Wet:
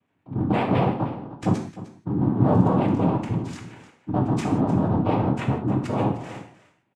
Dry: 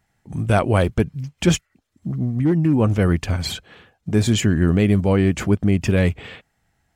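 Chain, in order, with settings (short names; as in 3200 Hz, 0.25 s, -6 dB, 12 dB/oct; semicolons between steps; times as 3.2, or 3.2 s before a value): 0.66–1.4 chord vocoder minor triad, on G3; Bessel low-pass 1600 Hz, order 8; spectral gate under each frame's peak -20 dB strong; limiter -13.5 dBFS, peak gain reduction 7.5 dB; 2.43–3 crackle 190/s -31 dBFS; 5.17–5.92 frequency shift -63 Hz; noise vocoder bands 4; echo 0.305 s -15.5 dB; non-linear reverb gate 0.2 s falling, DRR 2 dB; gain -1 dB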